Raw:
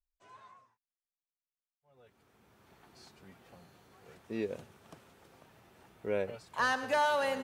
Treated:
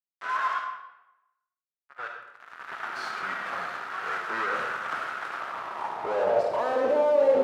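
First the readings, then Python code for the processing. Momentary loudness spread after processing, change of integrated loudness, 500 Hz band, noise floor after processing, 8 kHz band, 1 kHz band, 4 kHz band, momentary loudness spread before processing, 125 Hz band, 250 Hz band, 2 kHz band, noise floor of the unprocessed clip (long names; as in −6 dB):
15 LU, +4.5 dB, +12.0 dB, below −85 dBFS, −0.5 dB, +8.0 dB, +2.0 dB, 14 LU, −1.5 dB, +3.0 dB, +6.5 dB, below −85 dBFS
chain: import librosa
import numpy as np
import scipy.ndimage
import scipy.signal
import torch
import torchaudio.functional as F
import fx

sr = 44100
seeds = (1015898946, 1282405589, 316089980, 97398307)

y = fx.fuzz(x, sr, gain_db=59.0, gate_db=-60.0)
y = fx.rev_freeverb(y, sr, rt60_s=0.9, hf_ratio=0.8, predelay_ms=15, drr_db=2.0)
y = fx.filter_sweep_bandpass(y, sr, from_hz=1400.0, to_hz=480.0, start_s=5.3, end_s=6.96, q=3.4)
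y = F.gain(torch.from_numpy(y), -3.5).numpy()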